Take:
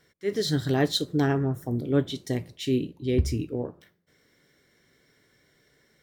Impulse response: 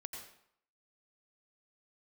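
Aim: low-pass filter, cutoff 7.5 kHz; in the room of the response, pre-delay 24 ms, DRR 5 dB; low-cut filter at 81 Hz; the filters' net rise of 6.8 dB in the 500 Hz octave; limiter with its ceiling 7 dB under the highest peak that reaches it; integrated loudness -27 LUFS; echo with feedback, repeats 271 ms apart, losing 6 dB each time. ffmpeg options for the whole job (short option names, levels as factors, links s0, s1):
-filter_complex "[0:a]highpass=81,lowpass=7500,equalizer=f=500:t=o:g=9,alimiter=limit=0.224:level=0:latency=1,aecho=1:1:271|542|813|1084|1355|1626:0.501|0.251|0.125|0.0626|0.0313|0.0157,asplit=2[s0][s1];[1:a]atrim=start_sample=2205,adelay=24[s2];[s1][s2]afir=irnorm=-1:irlink=0,volume=0.75[s3];[s0][s3]amix=inputs=2:normalize=0,volume=0.631"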